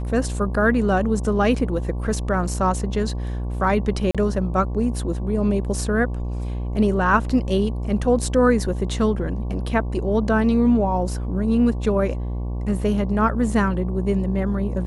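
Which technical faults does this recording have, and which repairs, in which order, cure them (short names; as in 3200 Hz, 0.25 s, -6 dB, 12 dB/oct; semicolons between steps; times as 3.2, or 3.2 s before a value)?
buzz 60 Hz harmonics 19 -26 dBFS
4.11–4.15 gap 36 ms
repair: de-hum 60 Hz, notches 19; interpolate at 4.11, 36 ms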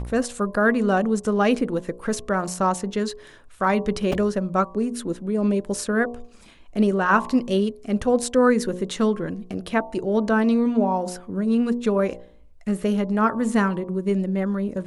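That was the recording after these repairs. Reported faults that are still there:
none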